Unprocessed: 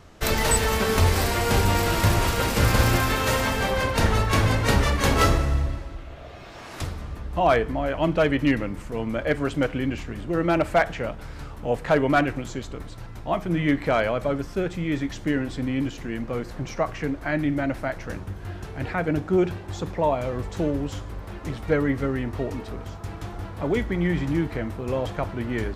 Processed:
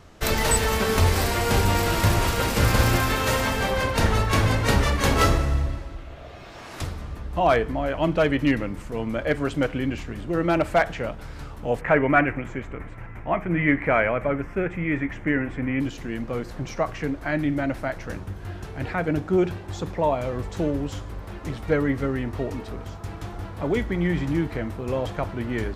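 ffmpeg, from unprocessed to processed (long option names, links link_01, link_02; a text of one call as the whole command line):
ffmpeg -i in.wav -filter_complex "[0:a]asettb=1/sr,asplit=3[link_01][link_02][link_03];[link_01]atrim=end=11.814[link_04];[link_02]atrim=start=11.81:end=15.8,asetpts=PTS-STARTPTS,afade=type=in:duration=0.004:curve=qsin,afade=type=out:start_time=3.986:duration=0.004:curve=qsin,highshelf=frequency=3000:width_type=q:width=3:gain=-11.5[link_05];[link_03]atrim=start=15.796[link_06];[link_04][link_05]acrossfade=duration=0.004:curve1=hsin:curve2=qsin[link_07];[link_07][link_06]acrossfade=duration=0.004:curve1=qsin:curve2=hsin" out.wav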